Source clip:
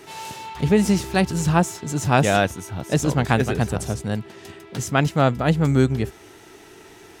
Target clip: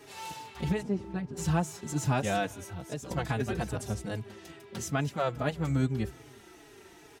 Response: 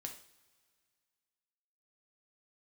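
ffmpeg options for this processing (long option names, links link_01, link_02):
-filter_complex "[0:a]asettb=1/sr,asplit=3[link_01][link_02][link_03];[link_01]atrim=end=2.614[link_04];[link_02]atrim=start=2.61:end=3.11,asetpts=PTS-STARTPTS,afade=type=in:duration=0.004:curve=qsin,afade=type=out:start_time=0.496:duration=0.004:curve=qsin,acompressor=threshold=-29dB:ratio=4[link_05];[link_03]atrim=start=3.106[link_06];[link_04][link_05]acrossfade=duration=0.004:curve1=hsin:curve2=qsin[link_07];[link_07][link_06]acrossfade=duration=0.004:curve1=qsin:curve2=hsin,alimiter=limit=-11dB:level=0:latency=1:release=298,asplit=3[link_08][link_09][link_10];[link_08]afade=type=out:start_time=0.81:duration=0.02[link_11];[link_09]bandpass=frequency=280:width_type=q:width=0.53:csg=0,afade=type=in:start_time=0.81:duration=0.02,afade=type=out:start_time=1.36:duration=0.02[link_12];[link_10]afade=type=in:start_time=1.36:duration=0.02[link_13];[link_11][link_12][link_13]amix=inputs=3:normalize=0,aecho=1:1:184|368|552:0.0668|0.0314|0.0148,asplit=2[link_14][link_15];[link_15]adelay=4.3,afreqshift=-2.4[link_16];[link_14][link_16]amix=inputs=2:normalize=1,volume=-4.5dB"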